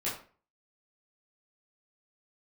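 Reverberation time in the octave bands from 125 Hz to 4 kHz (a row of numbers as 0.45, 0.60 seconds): 0.45, 0.40, 0.40, 0.40, 0.35, 0.30 seconds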